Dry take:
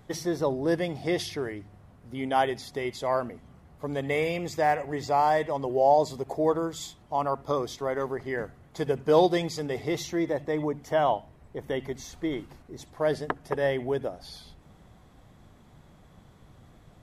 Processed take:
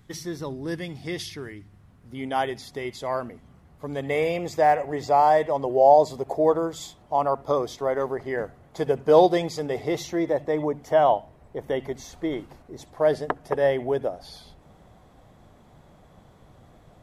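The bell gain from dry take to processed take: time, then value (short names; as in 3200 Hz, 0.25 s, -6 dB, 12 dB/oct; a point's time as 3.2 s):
bell 630 Hz 1.4 oct
1.58 s -11 dB
2.27 s -1.5 dB
3.86 s -1.5 dB
4.26 s +6 dB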